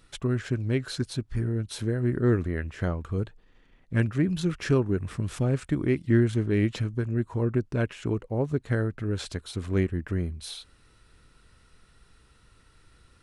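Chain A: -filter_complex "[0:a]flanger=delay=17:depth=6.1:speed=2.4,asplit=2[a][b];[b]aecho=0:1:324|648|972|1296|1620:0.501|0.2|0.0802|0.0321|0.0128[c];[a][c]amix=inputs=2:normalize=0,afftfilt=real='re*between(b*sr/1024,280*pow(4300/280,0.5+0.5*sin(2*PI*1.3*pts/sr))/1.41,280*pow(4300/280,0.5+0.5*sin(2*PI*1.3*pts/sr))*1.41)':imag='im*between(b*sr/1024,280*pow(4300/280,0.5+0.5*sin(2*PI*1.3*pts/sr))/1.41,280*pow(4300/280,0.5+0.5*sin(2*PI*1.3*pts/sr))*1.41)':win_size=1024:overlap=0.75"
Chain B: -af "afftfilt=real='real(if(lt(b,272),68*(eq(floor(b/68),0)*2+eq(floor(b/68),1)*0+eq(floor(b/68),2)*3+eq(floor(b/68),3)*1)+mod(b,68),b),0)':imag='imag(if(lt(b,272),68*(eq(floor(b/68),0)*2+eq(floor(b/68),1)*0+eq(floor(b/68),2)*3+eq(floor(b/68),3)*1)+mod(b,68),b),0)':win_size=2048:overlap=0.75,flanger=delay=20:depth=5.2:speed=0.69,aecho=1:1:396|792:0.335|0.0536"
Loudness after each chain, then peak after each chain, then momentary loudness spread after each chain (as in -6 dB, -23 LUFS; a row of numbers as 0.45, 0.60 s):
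-39.0, -27.5 LUFS; -18.5, -12.0 dBFS; 19, 8 LU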